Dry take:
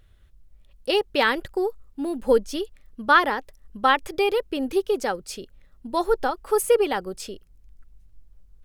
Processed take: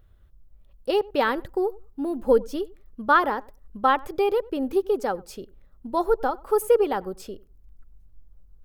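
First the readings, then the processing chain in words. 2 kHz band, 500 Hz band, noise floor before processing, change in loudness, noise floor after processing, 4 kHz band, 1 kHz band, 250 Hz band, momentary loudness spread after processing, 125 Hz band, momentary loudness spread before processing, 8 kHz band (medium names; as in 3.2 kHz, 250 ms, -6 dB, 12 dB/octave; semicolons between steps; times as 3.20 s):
-5.0 dB, 0.0 dB, -55 dBFS, -1.0 dB, -54 dBFS, -8.5 dB, -0.5 dB, 0.0 dB, 16 LU, no reading, 15 LU, -8.0 dB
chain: high-order bell 4.3 kHz -8.5 dB 2.9 oct; on a send: filtered feedback delay 94 ms, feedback 15%, low-pass 1.3 kHz, level -22 dB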